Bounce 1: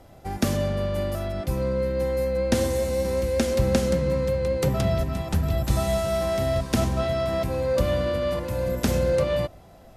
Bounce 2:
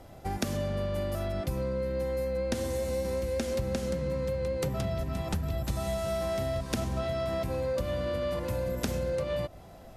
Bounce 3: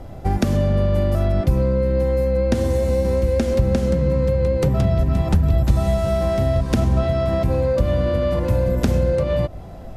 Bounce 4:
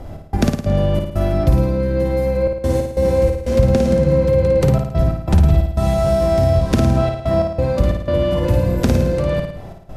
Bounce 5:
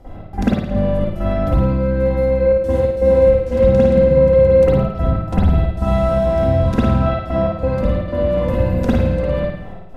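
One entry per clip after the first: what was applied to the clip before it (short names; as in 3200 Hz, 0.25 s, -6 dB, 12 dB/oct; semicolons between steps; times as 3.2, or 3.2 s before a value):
compressor, threshold -28 dBFS, peak gain reduction 12 dB
tilt -2 dB/oct; gain +8.5 dB
step gate "x.x.xx.xxxxxxx" 91 bpm -60 dB; on a send: flutter echo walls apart 9.4 m, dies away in 0.69 s; on the sum: gain +2.5 dB
reverb, pre-delay 45 ms, DRR -12 dB; gain -12 dB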